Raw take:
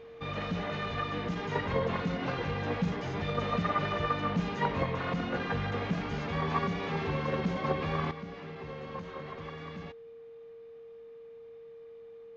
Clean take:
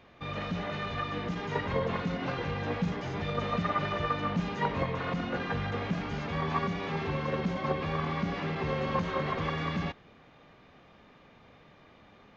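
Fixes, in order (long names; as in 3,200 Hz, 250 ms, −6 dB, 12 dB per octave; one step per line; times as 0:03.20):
notch filter 460 Hz, Q 30
level 0 dB, from 0:08.11 +11 dB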